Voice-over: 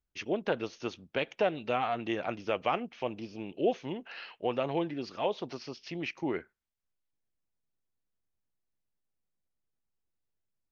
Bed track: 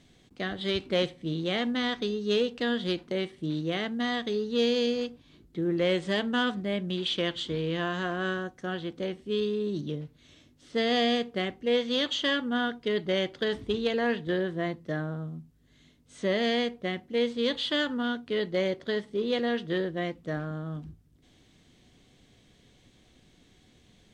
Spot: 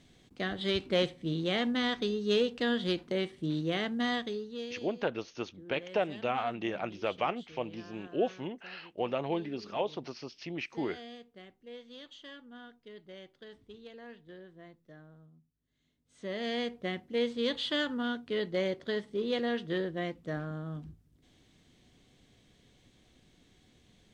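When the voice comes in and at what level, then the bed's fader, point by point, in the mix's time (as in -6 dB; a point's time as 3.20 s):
4.55 s, -1.5 dB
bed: 4.14 s -1.5 dB
4.88 s -21.5 dB
15.59 s -21.5 dB
16.76 s -3.5 dB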